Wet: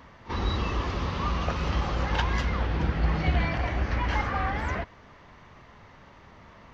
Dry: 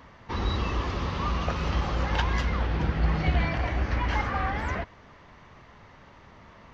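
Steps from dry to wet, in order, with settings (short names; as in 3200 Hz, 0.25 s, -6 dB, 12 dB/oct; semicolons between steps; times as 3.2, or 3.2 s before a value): pre-echo 41 ms -16.5 dB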